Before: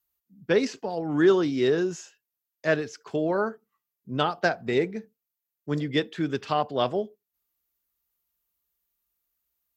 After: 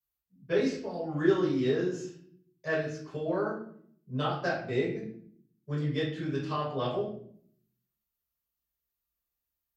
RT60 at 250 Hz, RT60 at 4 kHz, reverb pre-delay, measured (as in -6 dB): 1.0 s, 0.45 s, 6 ms